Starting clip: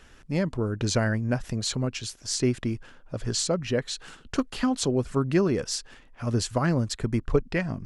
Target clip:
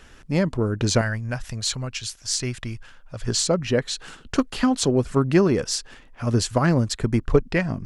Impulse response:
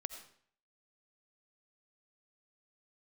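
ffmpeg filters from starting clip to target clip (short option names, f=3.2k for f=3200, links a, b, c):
-filter_complex "[0:a]asettb=1/sr,asplit=3[a][b][c];[a]atrim=end=1.014[d];[b]atrim=start=1.01:end=3.28,asetpts=PTS-STARTPTS,afade=t=in:d=0.004:c=qsin,afade=t=out:st=2.266:d=0.004:c=qsin,equalizer=f=310:t=o:w=2.2:g=-12.5[e];[c]atrim=start=3.276[f];[d][e]acrossfade=d=0.004:c1=hsin:c2=qsin[g];[g][f]acrossfade=d=0.004:c1=qsin:c2=hsin,aeval=exprs='0.335*(cos(1*acos(clip(val(0)/0.335,-1,1)))-cos(1*PI/2))+0.00668*(cos(4*acos(clip(val(0)/0.335,-1,1)))-cos(4*PI/2))+0.00531*(cos(6*acos(clip(val(0)/0.335,-1,1)))-cos(6*PI/2))+0.00376*(cos(7*acos(clip(val(0)/0.335,-1,1)))-cos(7*PI/2))':c=same,volume=5dB"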